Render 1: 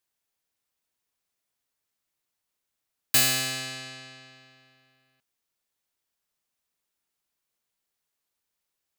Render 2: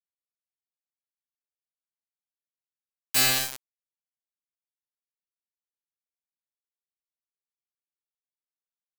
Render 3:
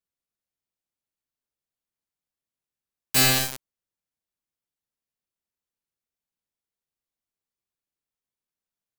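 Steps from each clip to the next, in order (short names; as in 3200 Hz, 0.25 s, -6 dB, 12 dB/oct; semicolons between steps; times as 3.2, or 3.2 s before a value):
resonator bank C3 sus4, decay 0.25 s; bit-crush 5-bit; gain +6.5 dB
low shelf 460 Hz +9 dB; gain +2 dB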